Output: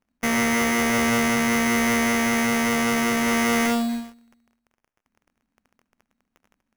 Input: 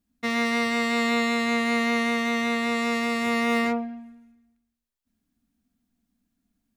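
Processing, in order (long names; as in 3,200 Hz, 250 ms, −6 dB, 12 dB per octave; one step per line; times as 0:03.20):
in parallel at −9 dB: fuzz pedal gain 39 dB, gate −44 dBFS
on the sum: surface crackle 89 per second −43 dBFS
sample-rate reduction 4,100 Hz, jitter 0%
level −3 dB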